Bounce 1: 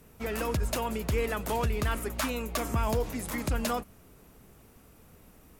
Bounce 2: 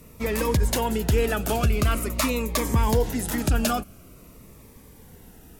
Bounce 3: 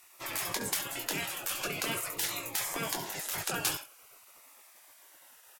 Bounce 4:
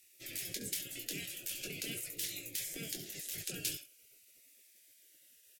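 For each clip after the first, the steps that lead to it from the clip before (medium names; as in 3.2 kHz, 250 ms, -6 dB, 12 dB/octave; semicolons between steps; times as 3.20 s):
Shepard-style phaser falling 0.46 Hz; trim +8 dB
early reflections 21 ms -6.5 dB, 68 ms -14 dB; spectral gate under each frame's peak -20 dB weak; trim -1.5 dB
Butterworth band-stop 1 kHz, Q 0.53; trim -5.5 dB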